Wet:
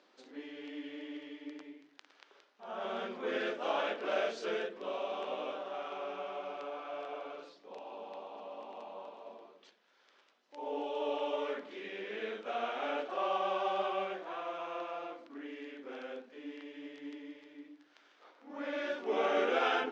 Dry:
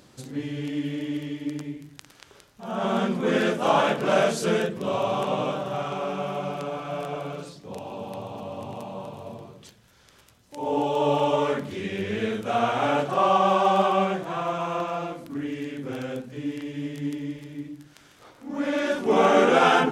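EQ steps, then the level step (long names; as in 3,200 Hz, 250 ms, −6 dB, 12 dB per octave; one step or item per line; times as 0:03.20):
Bessel high-pass filter 450 Hz, order 8
Bessel low-pass filter 3,600 Hz, order 6
dynamic equaliser 970 Hz, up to −7 dB, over −35 dBFS, Q 1.4
−7.5 dB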